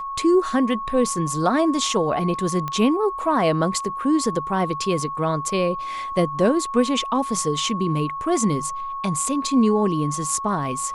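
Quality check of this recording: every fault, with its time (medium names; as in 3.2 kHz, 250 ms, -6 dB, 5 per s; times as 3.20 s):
whine 1.1 kHz -27 dBFS
2.68 s: pop -14 dBFS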